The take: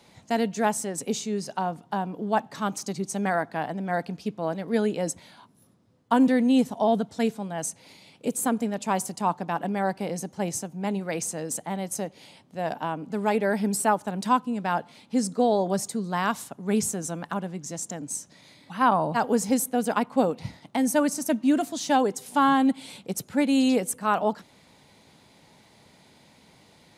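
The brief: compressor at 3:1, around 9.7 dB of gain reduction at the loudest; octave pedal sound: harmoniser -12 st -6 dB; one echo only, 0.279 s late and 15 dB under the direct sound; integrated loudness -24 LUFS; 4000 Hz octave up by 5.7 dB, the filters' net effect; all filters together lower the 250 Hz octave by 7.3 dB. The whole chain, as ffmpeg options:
-filter_complex "[0:a]equalizer=f=250:t=o:g=-8.5,equalizer=f=4k:t=o:g=7.5,acompressor=threshold=-30dB:ratio=3,aecho=1:1:279:0.178,asplit=2[a][b];[b]asetrate=22050,aresample=44100,atempo=2,volume=-6dB[c];[a][c]amix=inputs=2:normalize=0,volume=9dB"

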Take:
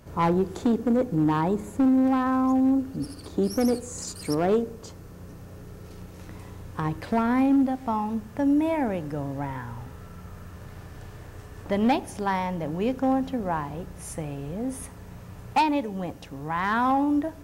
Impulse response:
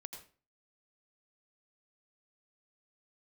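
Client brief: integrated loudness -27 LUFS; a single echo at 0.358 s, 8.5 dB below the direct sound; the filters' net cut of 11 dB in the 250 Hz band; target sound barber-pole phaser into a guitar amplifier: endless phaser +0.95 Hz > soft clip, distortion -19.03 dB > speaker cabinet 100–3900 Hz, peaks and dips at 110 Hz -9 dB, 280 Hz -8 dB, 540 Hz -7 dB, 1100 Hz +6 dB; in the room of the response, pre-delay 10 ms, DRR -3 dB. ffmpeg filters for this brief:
-filter_complex "[0:a]equalizer=f=250:t=o:g=-7,aecho=1:1:358:0.376,asplit=2[a][b];[1:a]atrim=start_sample=2205,adelay=10[c];[b][c]afir=irnorm=-1:irlink=0,volume=7dB[d];[a][d]amix=inputs=2:normalize=0,asplit=2[e][f];[f]afreqshift=0.95[g];[e][g]amix=inputs=2:normalize=1,asoftclip=threshold=-16dB,highpass=100,equalizer=f=110:t=q:w=4:g=-9,equalizer=f=280:t=q:w=4:g=-8,equalizer=f=540:t=q:w=4:g=-7,equalizer=f=1.1k:t=q:w=4:g=6,lowpass=f=3.9k:w=0.5412,lowpass=f=3.9k:w=1.3066,volume=2dB"

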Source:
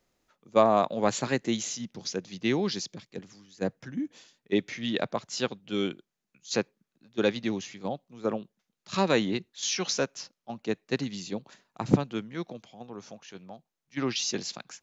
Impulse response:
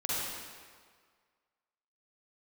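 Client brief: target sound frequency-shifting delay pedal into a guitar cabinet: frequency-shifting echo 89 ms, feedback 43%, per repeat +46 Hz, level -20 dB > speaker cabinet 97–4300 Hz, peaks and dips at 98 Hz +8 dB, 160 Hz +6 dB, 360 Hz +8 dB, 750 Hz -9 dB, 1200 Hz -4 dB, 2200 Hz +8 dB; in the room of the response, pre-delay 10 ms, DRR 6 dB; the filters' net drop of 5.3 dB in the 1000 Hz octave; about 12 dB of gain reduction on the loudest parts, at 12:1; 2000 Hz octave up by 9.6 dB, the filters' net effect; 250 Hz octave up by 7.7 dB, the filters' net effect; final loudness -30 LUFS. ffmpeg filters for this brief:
-filter_complex "[0:a]equalizer=f=250:t=o:g=6.5,equalizer=f=1k:t=o:g=-3.5,equalizer=f=2k:t=o:g=8,acompressor=threshold=-23dB:ratio=12,asplit=2[a][b];[1:a]atrim=start_sample=2205,adelay=10[c];[b][c]afir=irnorm=-1:irlink=0,volume=-13dB[d];[a][d]amix=inputs=2:normalize=0,asplit=4[e][f][g][h];[f]adelay=89,afreqshift=46,volume=-20dB[i];[g]adelay=178,afreqshift=92,volume=-27.3dB[j];[h]adelay=267,afreqshift=138,volume=-34.7dB[k];[e][i][j][k]amix=inputs=4:normalize=0,highpass=97,equalizer=f=98:t=q:w=4:g=8,equalizer=f=160:t=q:w=4:g=6,equalizer=f=360:t=q:w=4:g=8,equalizer=f=750:t=q:w=4:g=-9,equalizer=f=1.2k:t=q:w=4:g=-4,equalizer=f=2.2k:t=q:w=4:g=8,lowpass=f=4.3k:w=0.5412,lowpass=f=4.3k:w=1.3066,volume=-1.5dB"

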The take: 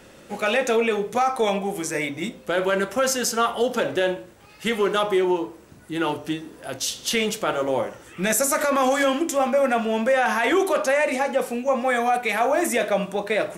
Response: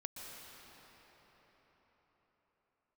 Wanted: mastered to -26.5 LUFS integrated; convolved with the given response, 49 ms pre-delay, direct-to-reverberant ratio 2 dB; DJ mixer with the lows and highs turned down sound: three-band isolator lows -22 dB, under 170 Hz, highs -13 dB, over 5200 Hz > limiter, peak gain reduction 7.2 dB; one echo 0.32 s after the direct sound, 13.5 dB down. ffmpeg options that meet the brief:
-filter_complex "[0:a]aecho=1:1:320:0.211,asplit=2[a][b];[1:a]atrim=start_sample=2205,adelay=49[c];[b][c]afir=irnorm=-1:irlink=0,volume=-0.5dB[d];[a][d]amix=inputs=2:normalize=0,acrossover=split=170 5200:gain=0.0794 1 0.224[e][f][g];[e][f][g]amix=inputs=3:normalize=0,volume=-3dB,alimiter=limit=-17dB:level=0:latency=1"

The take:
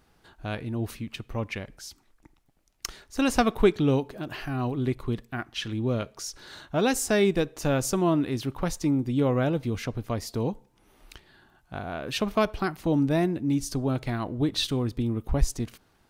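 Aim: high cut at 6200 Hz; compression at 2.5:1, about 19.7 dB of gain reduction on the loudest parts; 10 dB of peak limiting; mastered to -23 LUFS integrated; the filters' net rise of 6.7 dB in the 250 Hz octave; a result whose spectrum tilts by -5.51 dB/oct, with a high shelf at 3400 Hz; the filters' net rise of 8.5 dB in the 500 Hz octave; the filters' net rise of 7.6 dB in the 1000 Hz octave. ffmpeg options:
-af "lowpass=6.2k,equalizer=f=250:t=o:g=5.5,equalizer=f=500:t=o:g=7.5,equalizer=f=1k:t=o:g=6.5,highshelf=f=3.4k:g=4,acompressor=threshold=-38dB:ratio=2.5,volume=14.5dB,alimiter=limit=-12.5dB:level=0:latency=1"

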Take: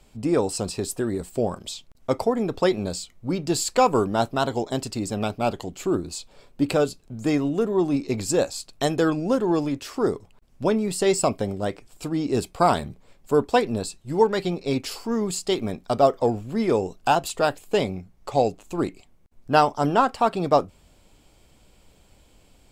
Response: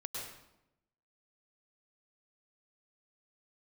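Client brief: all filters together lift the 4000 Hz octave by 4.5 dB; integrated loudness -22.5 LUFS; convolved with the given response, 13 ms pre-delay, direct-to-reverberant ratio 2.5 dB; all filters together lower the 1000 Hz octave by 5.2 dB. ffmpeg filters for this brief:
-filter_complex "[0:a]equalizer=f=1k:t=o:g=-8,equalizer=f=4k:t=o:g=6,asplit=2[a][b];[1:a]atrim=start_sample=2205,adelay=13[c];[b][c]afir=irnorm=-1:irlink=0,volume=-3dB[d];[a][d]amix=inputs=2:normalize=0,volume=1dB"

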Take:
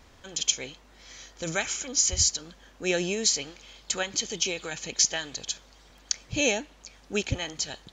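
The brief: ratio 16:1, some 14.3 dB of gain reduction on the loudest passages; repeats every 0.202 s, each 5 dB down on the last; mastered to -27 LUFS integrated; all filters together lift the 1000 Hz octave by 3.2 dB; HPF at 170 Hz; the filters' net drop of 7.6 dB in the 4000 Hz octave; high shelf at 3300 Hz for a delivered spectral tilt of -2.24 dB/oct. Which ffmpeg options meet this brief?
-af "highpass=170,equalizer=f=1k:t=o:g=5.5,highshelf=f=3.3k:g=-7,equalizer=f=4k:t=o:g=-5,acompressor=threshold=-36dB:ratio=16,aecho=1:1:202|404|606|808|1010|1212|1414:0.562|0.315|0.176|0.0988|0.0553|0.031|0.0173,volume=13.5dB"

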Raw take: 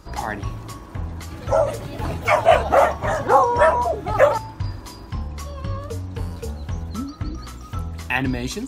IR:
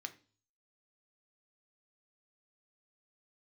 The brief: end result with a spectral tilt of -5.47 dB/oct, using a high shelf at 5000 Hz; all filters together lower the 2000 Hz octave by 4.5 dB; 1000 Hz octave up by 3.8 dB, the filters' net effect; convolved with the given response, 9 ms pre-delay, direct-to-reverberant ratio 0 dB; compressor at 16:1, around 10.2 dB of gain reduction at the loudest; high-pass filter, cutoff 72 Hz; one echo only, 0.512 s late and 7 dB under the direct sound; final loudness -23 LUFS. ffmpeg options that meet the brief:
-filter_complex "[0:a]highpass=72,equalizer=f=1k:t=o:g=6.5,equalizer=f=2k:t=o:g=-8.5,highshelf=f=5k:g=3.5,acompressor=threshold=-16dB:ratio=16,aecho=1:1:512:0.447,asplit=2[a][b];[1:a]atrim=start_sample=2205,adelay=9[c];[b][c]afir=irnorm=-1:irlink=0,volume=2.5dB[d];[a][d]amix=inputs=2:normalize=0,volume=0.5dB"

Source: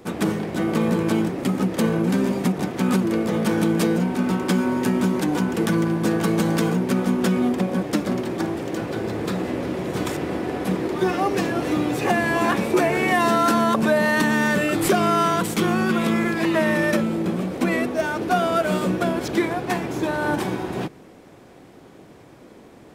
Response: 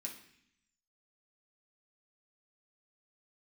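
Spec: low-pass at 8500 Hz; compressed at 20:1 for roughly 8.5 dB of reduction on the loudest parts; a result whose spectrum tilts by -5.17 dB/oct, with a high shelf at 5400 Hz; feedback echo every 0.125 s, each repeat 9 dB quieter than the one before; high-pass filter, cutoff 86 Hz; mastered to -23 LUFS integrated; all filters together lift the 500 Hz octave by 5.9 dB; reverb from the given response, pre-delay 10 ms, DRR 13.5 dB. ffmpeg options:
-filter_complex "[0:a]highpass=86,lowpass=8.5k,equalizer=f=500:t=o:g=8,highshelf=f=5.4k:g=4.5,acompressor=threshold=-18dB:ratio=20,aecho=1:1:125|250|375|500:0.355|0.124|0.0435|0.0152,asplit=2[a][b];[1:a]atrim=start_sample=2205,adelay=10[c];[b][c]afir=irnorm=-1:irlink=0,volume=-10.5dB[d];[a][d]amix=inputs=2:normalize=0,volume=-1dB"

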